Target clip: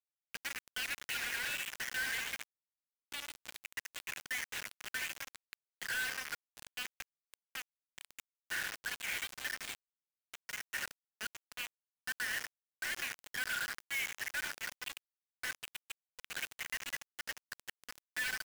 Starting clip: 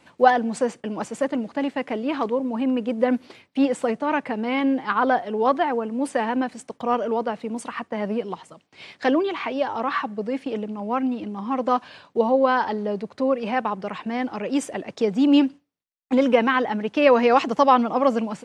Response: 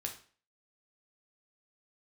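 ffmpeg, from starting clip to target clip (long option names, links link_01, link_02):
-filter_complex "[0:a]areverse,asplit=2[link_01][link_02];[link_02]aecho=0:1:95|190|285|380:0.0841|0.0463|0.0255|0.014[link_03];[link_01][link_03]amix=inputs=2:normalize=0,acrossover=split=3700[link_04][link_05];[link_05]acompressor=threshold=-48dB:ratio=4:attack=1:release=60[link_06];[link_04][link_06]amix=inputs=2:normalize=0,asplit=2[link_07][link_08];[link_08]adelay=74,lowpass=frequency=4900:poles=1,volume=-10dB,asplit=2[link_09][link_10];[link_10]adelay=74,lowpass=frequency=4900:poles=1,volume=0.49,asplit=2[link_11][link_12];[link_12]adelay=74,lowpass=frequency=4900:poles=1,volume=0.49,asplit=2[link_13][link_14];[link_14]adelay=74,lowpass=frequency=4900:poles=1,volume=0.49,asplit=2[link_15][link_16];[link_16]adelay=74,lowpass=frequency=4900:poles=1,volume=0.49[link_17];[link_09][link_11][link_13][link_15][link_17]amix=inputs=5:normalize=0[link_18];[link_07][link_18]amix=inputs=2:normalize=0,asoftclip=type=tanh:threshold=-17.5dB,afftfilt=real='re*between(b*sr/4096,1400,6400)':imag='im*between(b*sr/4096,1400,6400)':win_size=4096:overlap=0.75,aeval=exprs='0.119*(cos(1*acos(clip(val(0)/0.119,-1,1)))-cos(1*PI/2))+0.000944*(cos(2*acos(clip(val(0)/0.119,-1,1)))-cos(2*PI/2))+0.00473*(cos(5*acos(clip(val(0)/0.119,-1,1)))-cos(5*PI/2))':channel_layout=same,afftdn=noise_reduction=17:noise_floor=-51,alimiter=level_in=3dB:limit=-24dB:level=0:latency=1:release=57,volume=-3dB,acrusher=bits=5:mix=0:aa=0.000001,volume=-2.5dB"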